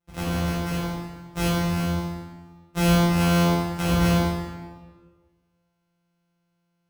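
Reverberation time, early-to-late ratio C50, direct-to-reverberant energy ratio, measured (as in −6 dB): 1.5 s, −1.5 dB, −10.0 dB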